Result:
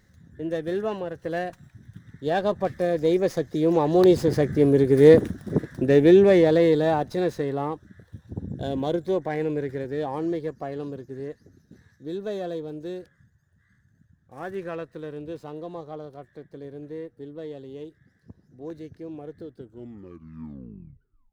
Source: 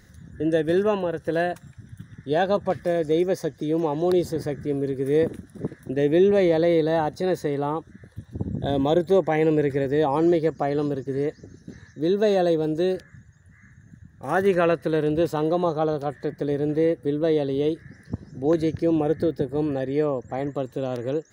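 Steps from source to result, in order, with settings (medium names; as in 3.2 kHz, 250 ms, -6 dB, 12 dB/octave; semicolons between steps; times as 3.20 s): tape stop on the ending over 2.08 s; Doppler pass-by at 4.98 s, 7 m/s, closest 5.9 m; sliding maximum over 3 samples; trim +8 dB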